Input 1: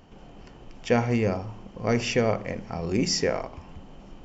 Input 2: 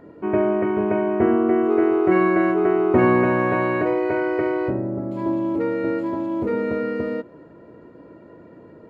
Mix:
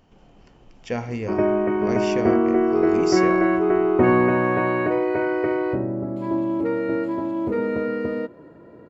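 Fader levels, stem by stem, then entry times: -5.0 dB, -0.5 dB; 0.00 s, 1.05 s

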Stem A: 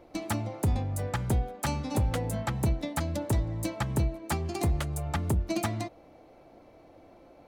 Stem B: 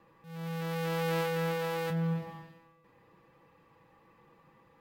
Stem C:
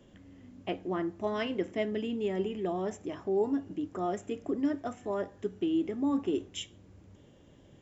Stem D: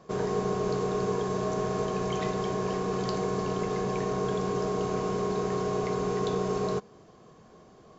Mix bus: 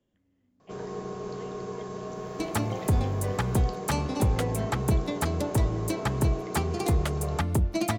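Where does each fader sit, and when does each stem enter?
+2.5 dB, -18.5 dB, -18.5 dB, -7.5 dB; 2.25 s, 1.70 s, 0.00 s, 0.60 s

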